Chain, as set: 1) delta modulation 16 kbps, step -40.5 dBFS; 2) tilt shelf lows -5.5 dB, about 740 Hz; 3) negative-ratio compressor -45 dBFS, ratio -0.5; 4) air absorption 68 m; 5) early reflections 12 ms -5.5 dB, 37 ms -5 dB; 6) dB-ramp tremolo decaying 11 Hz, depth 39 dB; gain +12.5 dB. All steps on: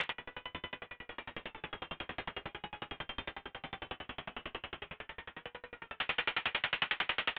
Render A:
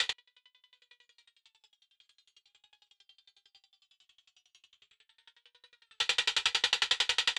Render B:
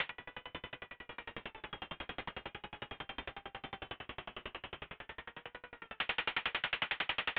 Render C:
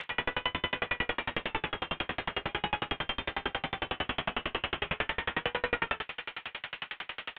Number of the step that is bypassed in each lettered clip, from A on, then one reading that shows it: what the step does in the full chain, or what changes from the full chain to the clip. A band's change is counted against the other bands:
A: 1, 4 kHz band +11.5 dB; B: 5, crest factor change -2.5 dB; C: 3, crest factor change -3.5 dB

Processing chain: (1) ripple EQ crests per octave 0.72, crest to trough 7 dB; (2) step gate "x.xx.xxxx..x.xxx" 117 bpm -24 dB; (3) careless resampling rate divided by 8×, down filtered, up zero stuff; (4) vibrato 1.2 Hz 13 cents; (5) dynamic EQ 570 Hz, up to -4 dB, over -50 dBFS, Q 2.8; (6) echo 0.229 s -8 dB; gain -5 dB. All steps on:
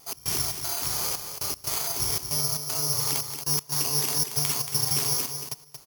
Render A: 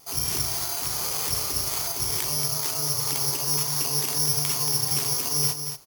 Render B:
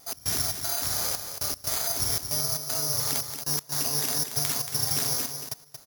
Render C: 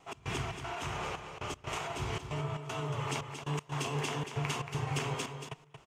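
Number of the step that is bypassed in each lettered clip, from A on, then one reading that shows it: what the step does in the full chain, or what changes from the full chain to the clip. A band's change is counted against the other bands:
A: 2, crest factor change -2.0 dB; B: 1, momentary loudness spread change -2 LU; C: 3, 8 kHz band -19.5 dB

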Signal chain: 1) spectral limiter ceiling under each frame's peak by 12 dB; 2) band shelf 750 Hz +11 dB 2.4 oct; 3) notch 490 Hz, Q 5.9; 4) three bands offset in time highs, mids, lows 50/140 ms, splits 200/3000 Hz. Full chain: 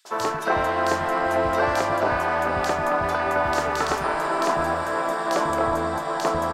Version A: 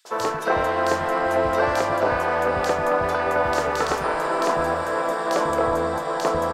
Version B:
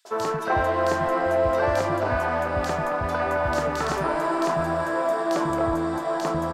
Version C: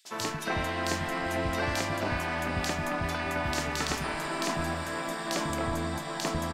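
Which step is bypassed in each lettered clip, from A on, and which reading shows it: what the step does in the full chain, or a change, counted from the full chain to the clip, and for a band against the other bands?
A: 3, 500 Hz band +2.5 dB; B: 1, 125 Hz band +6.0 dB; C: 2, 1 kHz band -9.0 dB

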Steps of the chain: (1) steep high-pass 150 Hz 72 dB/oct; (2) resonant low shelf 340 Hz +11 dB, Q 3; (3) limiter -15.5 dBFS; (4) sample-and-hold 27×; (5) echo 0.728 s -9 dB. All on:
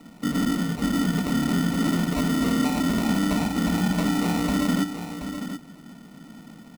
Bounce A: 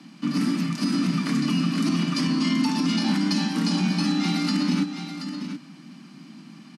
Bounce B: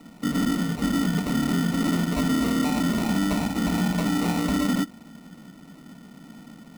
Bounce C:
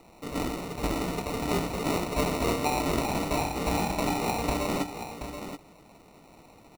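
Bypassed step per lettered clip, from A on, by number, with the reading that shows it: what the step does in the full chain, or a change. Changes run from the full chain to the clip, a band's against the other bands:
4, distortion -2 dB; 5, momentary loudness spread change -7 LU; 2, 500 Hz band +7.0 dB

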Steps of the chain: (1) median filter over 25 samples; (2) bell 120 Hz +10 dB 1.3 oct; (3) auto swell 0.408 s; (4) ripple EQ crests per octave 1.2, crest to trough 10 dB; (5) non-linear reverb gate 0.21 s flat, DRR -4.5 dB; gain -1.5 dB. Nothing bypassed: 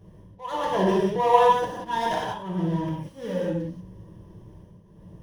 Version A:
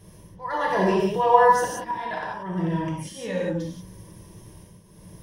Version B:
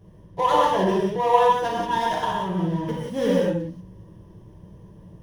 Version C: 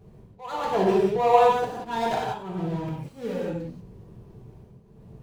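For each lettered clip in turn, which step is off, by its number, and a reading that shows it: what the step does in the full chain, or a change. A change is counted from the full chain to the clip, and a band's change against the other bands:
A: 1, 8 kHz band +7.5 dB; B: 3, crest factor change -2.5 dB; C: 4, 500 Hz band +2.5 dB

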